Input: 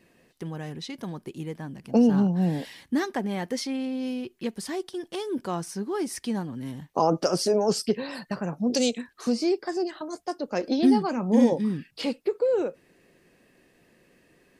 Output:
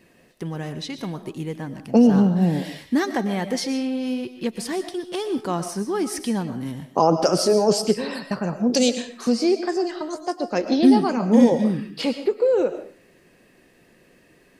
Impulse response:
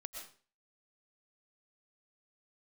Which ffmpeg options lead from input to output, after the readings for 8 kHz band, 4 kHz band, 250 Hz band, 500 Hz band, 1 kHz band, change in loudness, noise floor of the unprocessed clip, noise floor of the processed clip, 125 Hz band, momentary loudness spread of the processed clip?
+5.0 dB, +5.0 dB, +5.0 dB, +5.0 dB, +5.0 dB, +5.0 dB, -63 dBFS, -56 dBFS, +5.0 dB, 15 LU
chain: -filter_complex "[0:a]asplit=2[a][b];[1:a]atrim=start_sample=2205[c];[b][c]afir=irnorm=-1:irlink=0,volume=2.5dB[d];[a][d]amix=inputs=2:normalize=0"

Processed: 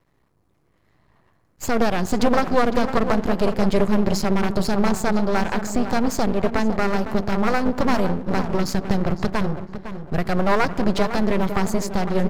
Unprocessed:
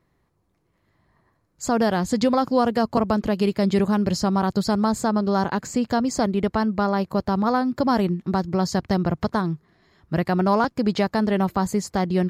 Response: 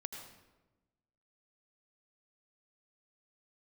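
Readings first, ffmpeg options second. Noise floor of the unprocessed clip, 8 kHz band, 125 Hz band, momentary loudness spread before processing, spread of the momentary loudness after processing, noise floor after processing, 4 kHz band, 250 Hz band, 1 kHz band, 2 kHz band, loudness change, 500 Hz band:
-69 dBFS, +1.0 dB, 0.0 dB, 4 LU, 4 LU, -64 dBFS, +1.0 dB, -0.5 dB, -0.5 dB, +4.5 dB, +0.5 dB, +1.0 dB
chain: -filter_complex "[0:a]asplit=2[a][b];[b]adelay=506,lowpass=f=1.9k:p=1,volume=-10dB,asplit=2[c][d];[d]adelay=506,lowpass=f=1.9k:p=1,volume=0.34,asplit=2[e][f];[f]adelay=506,lowpass=f=1.9k:p=1,volume=0.34,asplit=2[g][h];[h]adelay=506,lowpass=f=1.9k:p=1,volume=0.34[i];[a][c][e][g][i]amix=inputs=5:normalize=0,asplit=2[j][k];[1:a]atrim=start_sample=2205,lowpass=2.4k[l];[k][l]afir=irnorm=-1:irlink=0,volume=-11dB[m];[j][m]amix=inputs=2:normalize=0,aeval=exprs='max(val(0),0)':c=same,volume=5dB"

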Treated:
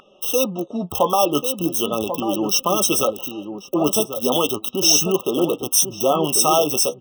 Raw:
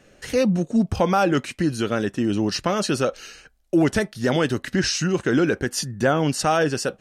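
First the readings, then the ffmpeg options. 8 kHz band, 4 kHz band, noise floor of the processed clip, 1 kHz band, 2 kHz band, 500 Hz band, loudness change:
+11.5 dB, +7.0 dB, -49 dBFS, +3.0 dB, -7.0 dB, +2.5 dB, +3.5 dB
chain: -filter_complex "[0:a]flanger=delay=5:depth=8.6:regen=39:speed=0.38:shape=sinusoidal,lowshelf=f=220:g=-8.5,acrossover=split=730|3700[a][b][c];[c]acrusher=bits=6:mix=0:aa=0.000001[d];[a][b][d]amix=inputs=3:normalize=0,aemphasis=mode=production:type=bsi,aeval=exprs='val(0)+0.0251*sin(2*PI*1600*n/s)':c=same,asplit=2[e][f];[f]adelay=1091,lowpass=f=900:p=1,volume=-7dB,asplit=2[g][h];[h]adelay=1091,lowpass=f=900:p=1,volume=0.16,asplit=2[i][j];[j]adelay=1091,lowpass=f=900:p=1,volume=0.16[k];[g][i][k]amix=inputs=3:normalize=0[l];[e][l]amix=inputs=2:normalize=0,afftfilt=real='re*eq(mod(floor(b*sr/1024/1300),2),0)':imag='im*eq(mod(floor(b*sr/1024/1300),2),0)':win_size=1024:overlap=0.75,volume=9dB"

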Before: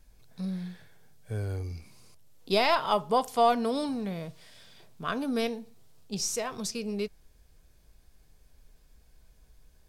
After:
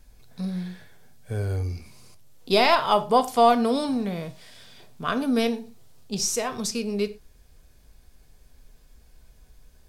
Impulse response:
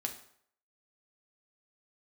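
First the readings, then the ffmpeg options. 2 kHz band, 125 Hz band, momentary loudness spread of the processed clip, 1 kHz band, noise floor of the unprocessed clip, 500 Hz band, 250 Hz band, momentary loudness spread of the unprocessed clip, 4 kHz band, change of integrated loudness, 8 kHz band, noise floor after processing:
+5.5 dB, +5.5 dB, 16 LU, +5.5 dB, -61 dBFS, +5.5 dB, +6.5 dB, 15 LU, +5.5 dB, +5.5 dB, +5.5 dB, -56 dBFS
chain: -filter_complex "[0:a]asplit=2[a][b];[1:a]atrim=start_sample=2205,afade=t=out:st=0.17:d=0.01,atrim=end_sample=7938[c];[b][c]afir=irnorm=-1:irlink=0,volume=-1dB[d];[a][d]amix=inputs=2:normalize=0"

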